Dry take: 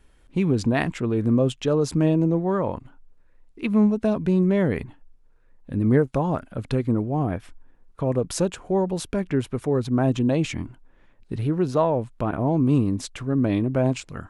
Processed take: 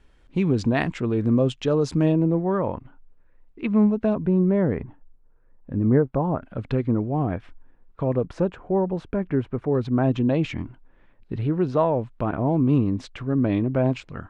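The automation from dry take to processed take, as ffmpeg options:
-af "asetnsamples=n=441:p=0,asendcmd='2.12 lowpass f 2700;4.15 lowpass f 1400;6.43 lowpass f 3000;8.25 lowpass f 1700;9.75 lowpass f 3300',lowpass=5.9k"

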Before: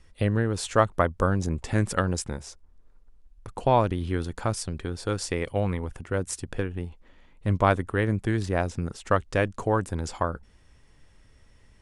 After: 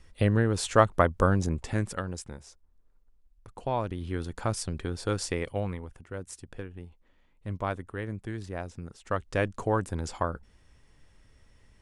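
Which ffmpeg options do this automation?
-af "volume=16.5dB,afade=t=out:st=1.33:d=0.67:silence=0.334965,afade=t=in:st=3.77:d=0.91:silence=0.398107,afade=t=out:st=5.2:d=0.72:silence=0.334965,afade=t=in:st=9:d=0.45:silence=0.398107"

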